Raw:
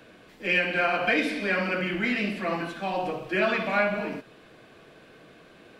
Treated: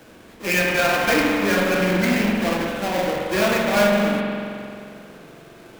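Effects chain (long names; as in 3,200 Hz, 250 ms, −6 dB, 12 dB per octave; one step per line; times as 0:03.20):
each half-wave held at its own peak
dynamic equaliser 9,600 Hz, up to −5 dB, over −41 dBFS, Q 0.84
spring reverb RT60 2.4 s, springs 44 ms, chirp 55 ms, DRR 0.5 dB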